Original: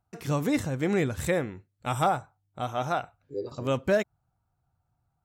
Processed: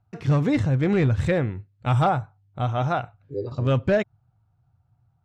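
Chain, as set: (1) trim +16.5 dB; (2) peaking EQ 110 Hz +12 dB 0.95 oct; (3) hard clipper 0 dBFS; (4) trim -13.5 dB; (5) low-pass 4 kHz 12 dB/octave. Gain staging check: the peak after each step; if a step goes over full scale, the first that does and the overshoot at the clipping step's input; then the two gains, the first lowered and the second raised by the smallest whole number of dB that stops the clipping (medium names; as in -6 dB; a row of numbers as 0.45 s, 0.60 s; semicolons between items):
+3.0 dBFS, +4.5 dBFS, 0.0 dBFS, -13.5 dBFS, -13.5 dBFS; step 1, 4.5 dB; step 1 +11.5 dB, step 4 -8.5 dB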